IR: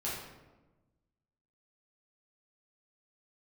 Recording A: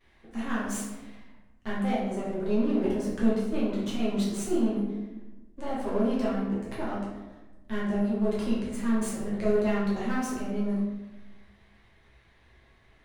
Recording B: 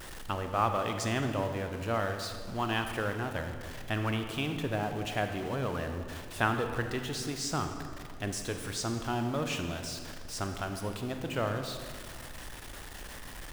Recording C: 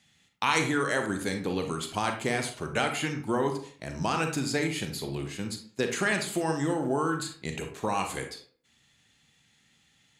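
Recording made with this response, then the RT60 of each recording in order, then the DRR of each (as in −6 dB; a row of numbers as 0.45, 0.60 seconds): A; 1.1, 2.1, 0.50 seconds; −8.5, 5.5, 4.5 decibels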